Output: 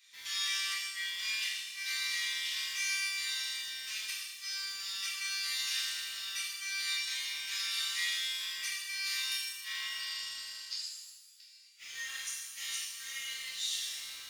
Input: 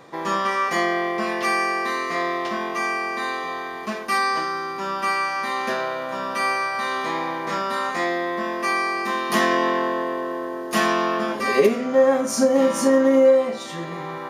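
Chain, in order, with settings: inverse Chebyshev high-pass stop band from 450 Hz, stop band 80 dB; in parallel at -8 dB: bit-crush 8-bit; 9.99–11.67 on the sum: synth low-pass 4800 Hz, resonance Q 6.7; flipped gate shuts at -22 dBFS, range -40 dB; shimmer reverb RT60 1.2 s, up +7 st, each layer -8 dB, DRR -7.5 dB; gain -7 dB

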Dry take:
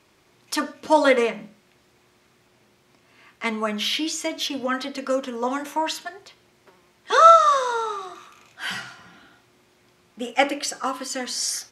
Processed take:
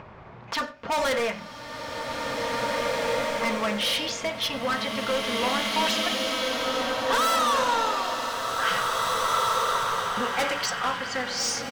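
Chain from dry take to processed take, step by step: G.711 law mismatch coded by A; LPF 9300 Hz; bell 320 Hz -14.5 dB 0.76 oct; low-pass opened by the level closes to 1100 Hz, open at -20.5 dBFS; upward compressor, threshold -28 dBFS; hard clip -26.5 dBFS, distortion -1 dB; on a send: echo 92 ms -22 dB; on the sum: bloom reverb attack 2.18 s, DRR -2 dB; gain +3.5 dB

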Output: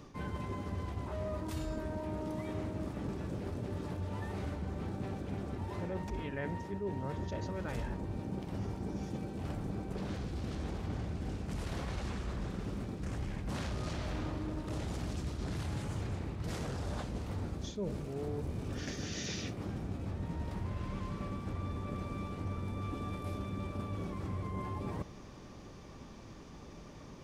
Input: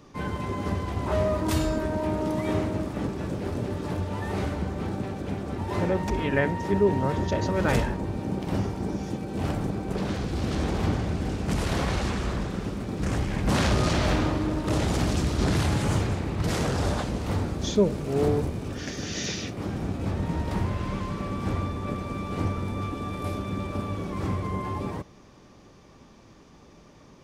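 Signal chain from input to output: low shelf 130 Hz +5 dB; reverse; compressor 6:1, threshold -36 dBFS, peak gain reduction 19.5 dB; reverse

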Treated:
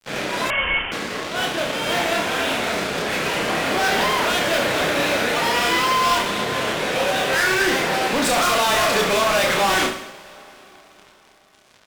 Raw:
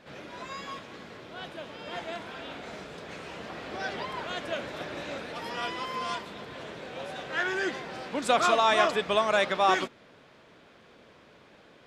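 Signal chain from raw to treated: HPF 130 Hz 6 dB/oct; bell 2400 Hz +3 dB 1.3 oct; fuzz box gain 39 dB, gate -48 dBFS; reverse bouncing-ball echo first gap 30 ms, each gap 1.25×, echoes 5; on a send at -19.5 dB: reverb RT60 4.7 s, pre-delay 0.113 s; 0.5–0.92 on the sum: inverted band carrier 3300 Hz; gain -6 dB

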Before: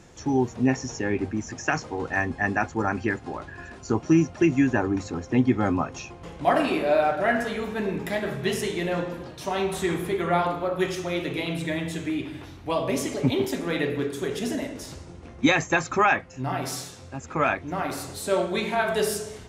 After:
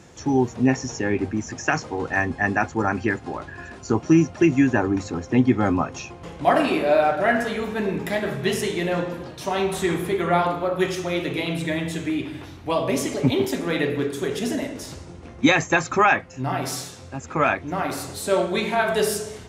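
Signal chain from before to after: HPF 54 Hz; gain +3 dB

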